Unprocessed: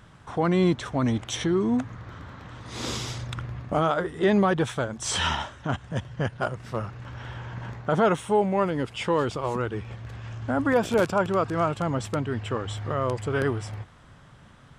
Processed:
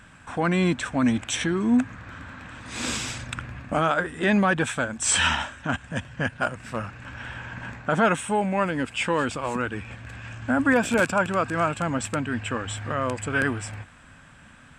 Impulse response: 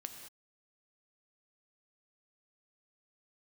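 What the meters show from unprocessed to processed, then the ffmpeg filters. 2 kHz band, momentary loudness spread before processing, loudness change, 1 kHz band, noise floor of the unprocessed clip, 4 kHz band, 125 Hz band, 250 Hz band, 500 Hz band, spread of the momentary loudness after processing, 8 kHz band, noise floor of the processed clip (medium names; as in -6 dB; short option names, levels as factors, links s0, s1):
+7.5 dB, 15 LU, +1.5 dB, +1.5 dB, -51 dBFS, +2.5 dB, -2.0 dB, +1.5 dB, -2.0 dB, 15 LU, +7.0 dB, -50 dBFS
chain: -af "equalizer=f=125:t=o:w=0.33:g=-6,equalizer=f=250:t=o:w=0.33:g=6,equalizer=f=400:t=o:w=0.33:g=-7,equalizer=f=1600:t=o:w=0.33:g=9,equalizer=f=2500:t=o:w=0.33:g=10,equalizer=f=8000:t=o:w=0.33:g=12"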